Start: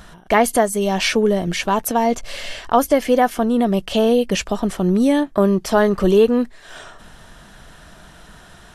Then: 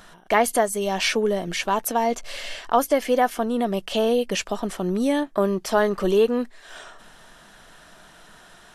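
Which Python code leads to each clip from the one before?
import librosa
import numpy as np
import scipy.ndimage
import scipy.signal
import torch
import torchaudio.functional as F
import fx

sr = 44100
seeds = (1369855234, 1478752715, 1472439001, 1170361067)

y = fx.peak_eq(x, sr, hz=61.0, db=-14.5, octaves=2.8)
y = y * librosa.db_to_amplitude(-3.0)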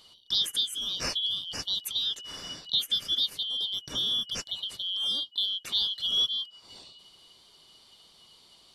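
y = fx.band_shuffle(x, sr, order='3412')
y = y * librosa.db_to_amplitude(-8.5)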